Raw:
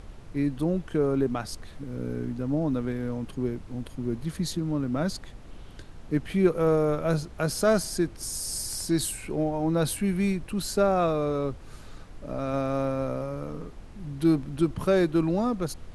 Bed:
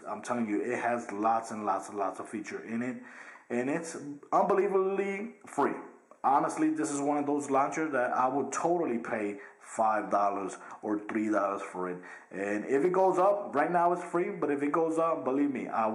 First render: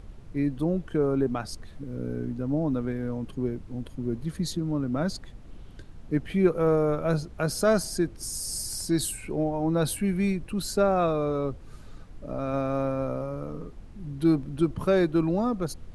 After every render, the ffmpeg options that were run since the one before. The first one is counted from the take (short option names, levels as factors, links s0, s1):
-af "afftdn=nr=6:nf=-45"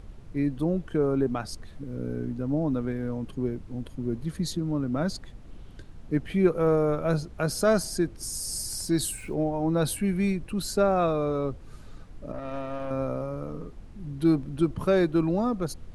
-filter_complex "[0:a]asettb=1/sr,asplit=3[s0][s1][s2];[s0]atrim=end=8.874[s3];[s1]atrim=start=8.87:end=9.34,asetpts=PTS-STARTPTS,afade=t=in:d=0.004:c=qsin,afade=t=out:st=0.466:d=0.004:c=qsin,aeval=exprs='val(0)*gte(abs(val(0)),0.00299)':c=same[s4];[s2]atrim=start=9.336[s5];[s3][s4]acrossfade=d=0.004:c1=hsin:c2=qsin[s6];[s6][s5]acrossfade=d=0.004:c1=qsin:c2=hsin,asettb=1/sr,asplit=3[s7][s8][s9];[s7]atrim=end=12.324[s10];[s8]atrim=start=12.32:end=12.91,asetpts=PTS-STARTPTS,afade=t=in:d=0.004:c=qsin,afade=t=out:st=0.586:d=0.004:c=qsin,aeval=exprs='(tanh(28.2*val(0)+0.65)-tanh(0.65))/28.2':c=same[s11];[s9]atrim=start=12.906[s12];[s10][s11]acrossfade=d=0.004:c1=hsin:c2=qsin[s13];[s13][s12]acrossfade=d=0.004:c1=qsin:c2=hsin"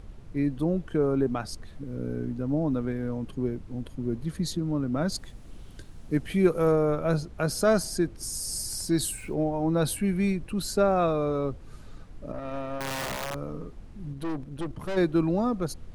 -filter_complex "[0:a]asettb=1/sr,asplit=3[s0][s1][s2];[s0]atrim=end=5.124[s3];[s1]atrim=start=5.12:end=6.72,asetpts=PTS-STARTPTS,afade=t=in:d=0.004:c=qsin,afade=t=out:st=1.596:d=0.004:c=qsin,highshelf=f=5300:g=11[s4];[s2]atrim=start=6.716[s5];[s3][s4]acrossfade=d=0.004:c1=hsin:c2=qsin[s6];[s6][s5]acrossfade=d=0.004:c1=qsin:c2=hsin,asettb=1/sr,asplit=3[s7][s8][s9];[s7]atrim=end=12.804[s10];[s8]atrim=start=12.8:end=13.35,asetpts=PTS-STARTPTS,afade=t=in:d=0.004:c=qsin,afade=t=out:st=0.546:d=0.004:c=qsin,aeval=exprs='(mod(20*val(0)+1,2)-1)/20':c=same[s11];[s9]atrim=start=13.346[s12];[s10][s11]acrossfade=d=0.004:c1=hsin:c2=qsin[s13];[s13][s12]acrossfade=d=0.004:c1=qsin:c2=hsin,asplit=3[s14][s15][s16];[s14]afade=t=out:st=14.12:d=0.02[s17];[s15]aeval=exprs='(tanh(28.2*val(0)+0.7)-tanh(0.7))/28.2':c=same,afade=t=in:st=14.12:d=0.02,afade=t=out:st=14.96:d=0.02[s18];[s16]afade=t=in:st=14.96:d=0.02[s19];[s17][s18][s19]amix=inputs=3:normalize=0"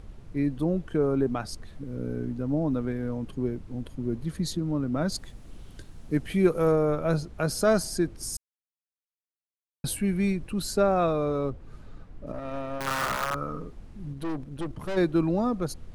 -filter_complex "[0:a]asettb=1/sr,asplit=3[s0][s1][s2];[s0]atrim=end=11.504[s3];[s1]atrim=start=11.5:end=12.27,asetpts=PTS-STARTPTS,afade=t=in:d=0.004:c=qsin,afade=t=out:st=0.766:d=0.004:c=qsin,highshelf=f=3700:g=-11[s4];[s2]atrim=start=12.266[s5];[s3][s4]acrossfade=d=0.004:c1=hsin:c2=qsin[s6];[s6][s5]acrossfade=d=0.004:c1=qsin:c2=hsin,asettb=1/sr,asplit=3[s7][s8][s9];[s7]atrim=end=12.864[s10];[s8]atrim=start=12.86:end=13.6,asetpts=PTS-STARTPTS,afade=t=in:d=0.004:c=qsin,afade=t=out:st=0.736:d=0.004:c=qsin,equalizer=f=1300:t=o:w=0.52:g=13.5[s11];[s9]atrim=start=13.596[s12];[s10][s11]acrossfade=d=0.004:c1=hsin:c2=qsin[s13];[s13][s12]acrossfade=d=0.004:c1=qsin:c2=hsin,asplit=3[s14][s15][s16];[s14]atrim=end=8.37,asetpts=PTS-STARTPTS,afade=t=out:st=8.366:d=0.004:c=hsin[s17];[s15]atrim=start=8.37:end=9.84,asetpts=PTS-STARTPTS,volume=0[s18];[s16]atrim=start=9.84,asetpts=PTS-STARTPTS,afade=t=in:d=0.004:c=hsin[s19];[s17][s18][s19]concat=n=3:v=0:a=1"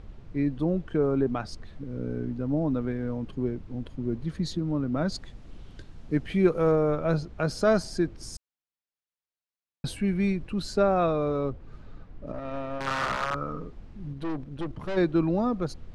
-af "lowpass=5100"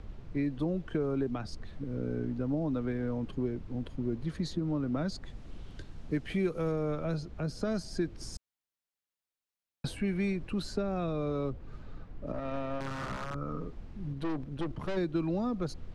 -filter_complex "[0:a]acrossover=split=330|2200|5500[s0][s1][s2][s3];[s0]acompressor=threshold=0.0251:ratio=4[s4];[s1]acompressor=threshold=0.0178:ratio=4[s5];[s2]acompressor=threshold=0.00447:ratio=4[s6];[s3]acompressor=threshold=0.00282:ratio=4[s7];[s4][s5][s6][s7]amix=inputs=4:normalize=0,acrossover=split=450[s8][s9];[s9]alimiter=level_in=2.11:limit=0.0631:level=0:latency=1:release=390,volume=0.473[s10];[s8][s10]amix=inputs=2:normalize=0"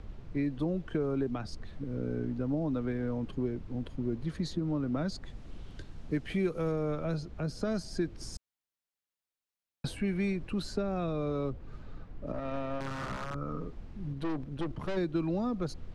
-af anull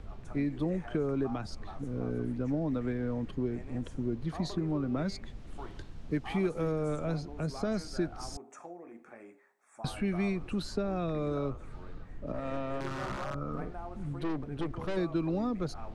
-filter_complex "[1:a]volume=0.119[s0];[0:a][s0]amix=inputs=2:normalize=0"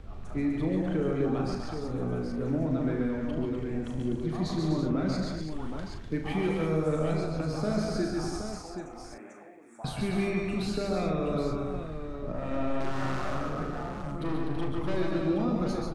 -filter_complex "[0:a]asplit=2[s0][s1];[s1]adelay=38,volume=0.447[s2];[s0][s2]amix=inputs=2:normalize=0,asplit=2[s3][s4];[s4]aecho=0:1:70|130|145|249|329|773:0.266|0.473|0.531|0.473|0.376|0.422[s5];[s3][s5]amix=inputs=2:normalize=0"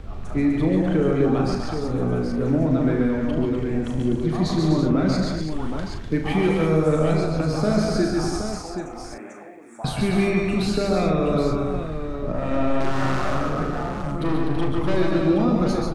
-af "volume=2.66"